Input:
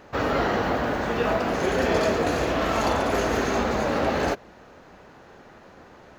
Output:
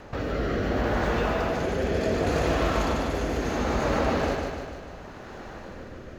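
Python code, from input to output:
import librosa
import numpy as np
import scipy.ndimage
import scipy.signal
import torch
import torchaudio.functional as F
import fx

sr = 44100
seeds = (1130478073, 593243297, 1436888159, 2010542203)

p1 = fx.low_shelf(x, sr, hz=77.0, db=11.5)
p2 = fx.over_compress(p1, sr, threshold_db=-31.0, ratio=-1.0)
p3 = p1 + F.gain(torch.from_numpy(p2), 1.5).numpy()
p4 = fx.rotary(p3, sr, hz=0.7)
p5 = fx.echo_feedback(p4, sr, ms=149, feedback_pct=59, wet_db=-4)
y = F.gain(torch.from_numpy(p5), -6.0).numpy()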